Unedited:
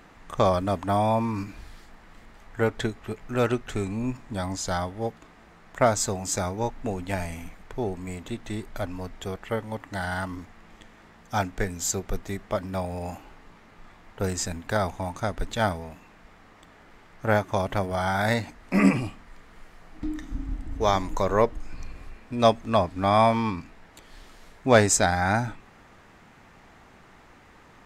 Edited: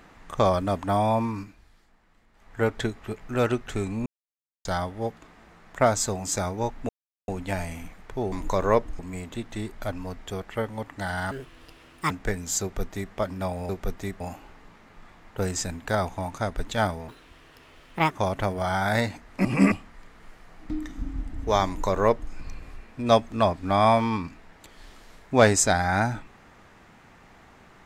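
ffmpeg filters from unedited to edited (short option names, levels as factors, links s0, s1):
-filter_complex "[0:a]asplit=16[s0][s1][s2][s3][s4][s5][s6][s7][s8][s9][s10][s11][s12][s13][s14][s15];[s0]atrim=end=1.56,asetpts=PTS-STARTPTS,afade=t=out:st=1.24:d=0.32:silence=0.223872[s16];[s1]atrim=start=1.56:end=2.32,asetpts=PTS-STARTPTS,volume=0.224[s17];[s2]atrim=start=2.32:end=4.06,asetpts=PTS-STARTPTS,afade=t=in:d=0.32:silence=0.223872,afade=t=out:st=1.736:d=0.004:c=hsin[s18];[s3]atrim=start=4.06:end=4.65,asetpts=PTS-STARTPTS,volume=0[s19];[s4]atrim=start=4.65:end=6.89,asetpts=PTS-STARTPTS,afade=t=in:d=0.004:c=hsin,afade=t=out:st=2.236:d=0.004:c=hsin,apad=pad_dur=0.39[s20];[s5]atrim=start=6.89:end=7.932,asetpts=PTS-STARTPTS,afade=t=in:d=0.004:c=hsin[s21];[s6]atrim=start=20.988:end=21.662[s22];[s7]atrim=start=7.928:end=10.254[s23];[s8]atrim=start=10.25:end=11.43,asetpts=PTS-STARTPTS,asetrate=65709,aresample=44100[s24];[s9]atrim=start=11.426:end=13.022[s25];[s10]atrim=start=11.948:end=12.462[s26];[s11]atrim=start=13.018:end=15.904[s27];[s12]atrim=start=15.9:end=17.44,asetpts=PTS-STARTPTS,asetrate=66150,aresample=44100[s28];[s13]atrim=start=17.436:end=18.782[s29];[s14]atrim=start=18.778:end=19.052,asetpts=PTS-STARTPTS,areverse[s30];[s15]atrim=start=19.048[s31];[s16][s17][s18][s19][s20][s21]concat=n=6:v=0:a=1[s32];[s32][s22]acrossfade=d=0.004:c1=hsin:c2=hsin[s33];[s33][s23]acrossfade=d=0.004:c1=hsin:c2=hsin[s34];[s34][s24]acrossfade=d=0.004:c1=hsin:c2=hsin[s35];[s35][s25]acrossfade=d=0.004:c1=hsin:c2=hsin[s36];[s36][s26]acrossfade=d=0.004:c1=hsin:c2=hsin[s37];[s37][s27]acrossfade=d=0.004:c1=hsin:c2=hsin[s38];[s38][s28]acrossfade=d=0.004:c1=hsin:c2=hsin[s39];[s39][s29]acrossfade=d=0.004:c1=hsin:c2=hsin[s40];[s40][s30]acrossfade=d=0.004:c1=hsin:c2=hsin[s41];[s41][s31]acrossfade=d=0.004:c1=hsin:c2=hsin"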